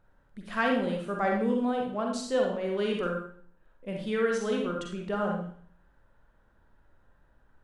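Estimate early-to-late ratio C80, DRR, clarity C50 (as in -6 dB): 7.0 dB, 0.0 dB, 2.5 dB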